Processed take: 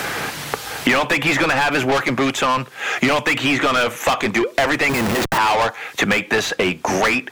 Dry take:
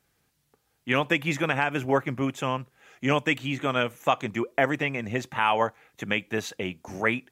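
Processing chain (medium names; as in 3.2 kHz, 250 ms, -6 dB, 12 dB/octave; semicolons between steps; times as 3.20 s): overdrive pedal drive 29 dB, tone 3.5 kHz, clips at -9 dBFS; 4.89–5.38 s: Schmitt trigger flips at -23 dBFS; three bands compressed up and down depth 100%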